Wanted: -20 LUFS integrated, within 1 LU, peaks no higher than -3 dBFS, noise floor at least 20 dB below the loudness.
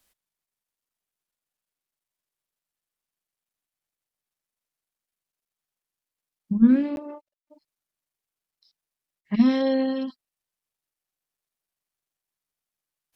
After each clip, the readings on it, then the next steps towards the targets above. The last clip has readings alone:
dropouts 1; longest dropout 11 ms; loudness -22.0 LUFS; peak -7.0 dBFS; loudness target -20.0 LUFS
-> interpolate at 6.96, 11 ms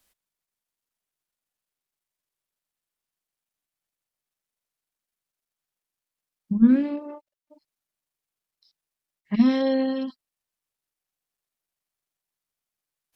dropouts 0; loudness -22.0 LUFS; peak -7.0 dBFS; loudness target -20.0 LUFS
-> gain +2 dB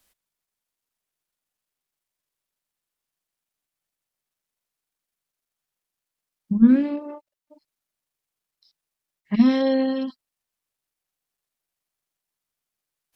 loudness -20.0 LUFS; peak -5.0 dBFS; noise floor -87 dBFS

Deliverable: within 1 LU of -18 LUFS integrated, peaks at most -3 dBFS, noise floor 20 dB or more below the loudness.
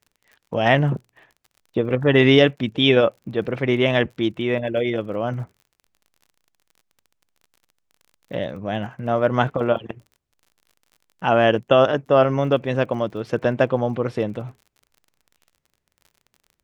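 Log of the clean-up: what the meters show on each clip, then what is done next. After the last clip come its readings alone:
ticks 36/s; loudness -20.5 LUFS; peak -1.5 dBFS; loudness target -18.0 LUFS
-> de-click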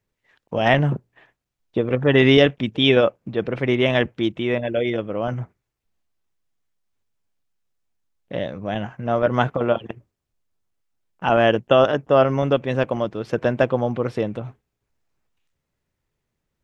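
ticks 0/s; loudness -20.5 LUFS; peak -1.5 dBFS; loudness target -18.0 LUFS
-> gain +2.5 dB; limiter -3 dBFS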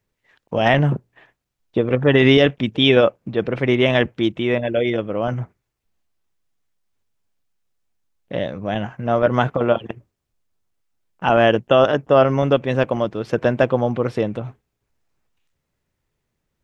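loudness -18.5 LUFS; peak -3.0 dBFS; noise floor -77 dBFS

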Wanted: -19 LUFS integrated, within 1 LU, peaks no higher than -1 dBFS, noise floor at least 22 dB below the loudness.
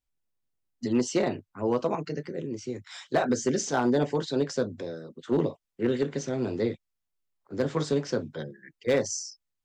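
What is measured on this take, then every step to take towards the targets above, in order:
clipped 0.4%; flat tops at -16.5 dBFS; loudness -29.0 LUFS; peak -16.5 dBFS; loudness target -19.0 LUFS
-> clip repair -16.5 dBFS; gain +10 dB

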